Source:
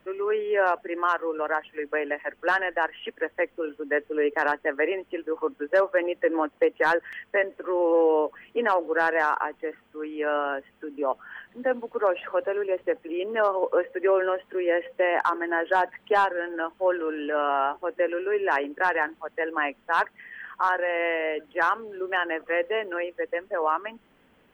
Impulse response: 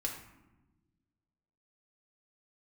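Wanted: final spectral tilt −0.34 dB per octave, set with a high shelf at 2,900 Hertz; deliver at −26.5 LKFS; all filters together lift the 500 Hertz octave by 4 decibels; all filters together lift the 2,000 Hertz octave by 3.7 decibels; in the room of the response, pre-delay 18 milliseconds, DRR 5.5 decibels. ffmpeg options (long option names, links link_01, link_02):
-filter_complex "[0:a]equalizer=frequency=500:width_type=o:gain=4.5,equalizer=frequency=2000:width_type=o:gain=6,highshelf=frequency=2900:gain=-5,asplit=2[link_01][link_02];[1:a]atrim=start_sample=2205,adelay=18[link_03];[link_02][link_03]afir=irnorm=-1:irlink=0,volume=-7dB[link_04];[link_01][link_04]amix=inputs=2:normalize=0,volume=-5dB"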